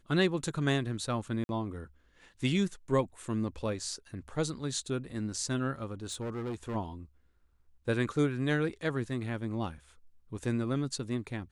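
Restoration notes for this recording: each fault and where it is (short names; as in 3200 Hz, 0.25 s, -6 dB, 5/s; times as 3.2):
1.44–1.49 gap 51 ms
6.04–6.76 clipped -32.5 dBFS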